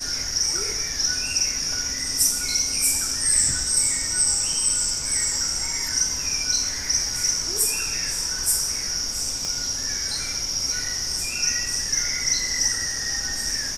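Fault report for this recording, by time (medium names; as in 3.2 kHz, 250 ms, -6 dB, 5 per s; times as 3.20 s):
9.45 s: pop -17 dBFS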